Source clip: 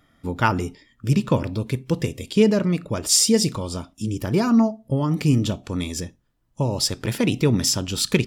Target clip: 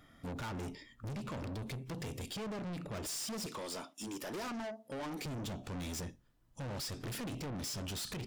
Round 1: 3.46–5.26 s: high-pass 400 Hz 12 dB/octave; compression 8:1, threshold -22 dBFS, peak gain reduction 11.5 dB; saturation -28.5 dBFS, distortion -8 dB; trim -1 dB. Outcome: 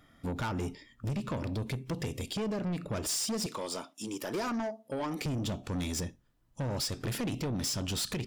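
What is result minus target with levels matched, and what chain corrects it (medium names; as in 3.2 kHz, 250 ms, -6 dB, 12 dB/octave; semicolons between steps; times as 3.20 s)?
saturation: distortion -5 dB
3.46–5.26 s: high-pass 400 Hz 12 dB/octave; compression 8:1, threshold -22 dBFS, peak gain reduction 11.5 dB; saturation -38 dBFS, distortion -3 dB; trim -1 dB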